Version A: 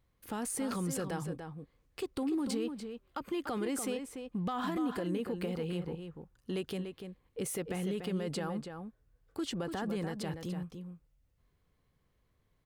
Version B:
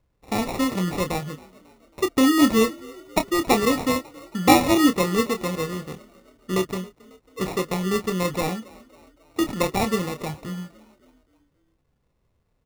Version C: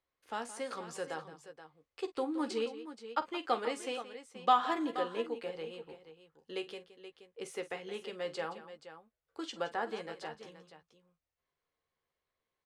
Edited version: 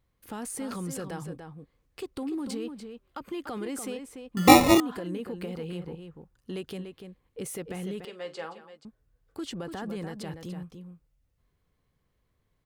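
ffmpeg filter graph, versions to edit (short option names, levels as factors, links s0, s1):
-filter_complex "[0:a]asplit=3[s0][s1][s2];[s0]atrim=end=4.372[s3];[1:a]atrim=start=4.368:end=4.802[s4];[s1]atrim=start=4.798:end=8.052[s5];[2:a]atrim=start=8.048:end=8.852[s6];[s2]atrim=start=8.848[s7];[s3][s4]acrossfade=d=0.004:c1=hsin:c2=hsin[s8];[s8][s5]acrossfade=d=0.004:c1=hsin:c2=hsin[s9];[s9][s6]acrossfade=d=0.004:c1=hsin:c2=hsin[s10];[s10][s7]acrossfade=d=0.004:c1=hsin:c2=hsin"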